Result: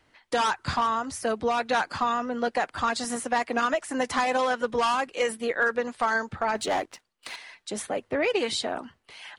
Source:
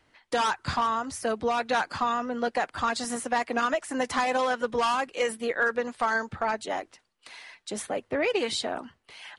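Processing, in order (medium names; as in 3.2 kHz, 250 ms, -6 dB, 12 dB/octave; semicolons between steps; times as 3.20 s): 6.55–7.36 s: waveshaping leveller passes 2; trim +1 dB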